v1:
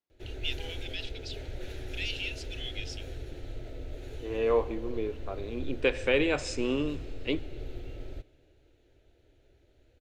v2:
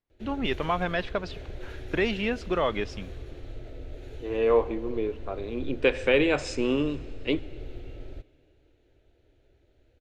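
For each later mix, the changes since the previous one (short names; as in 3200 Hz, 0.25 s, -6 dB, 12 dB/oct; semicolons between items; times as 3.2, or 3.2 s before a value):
first voice: remove steep high-pass 2600 Hz; second voice +4.0 dB; master: add high shelf 5300 Hz -7 dB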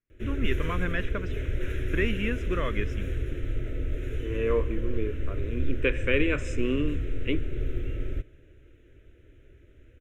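background +10.5 dB; master: add fixed phaser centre 1900 Hz, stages 4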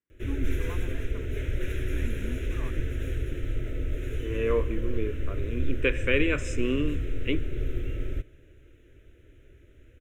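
first voice: add double band-pass 470 Hz, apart 1.6 oct; master: add high shelf 5300 Hz +7 dB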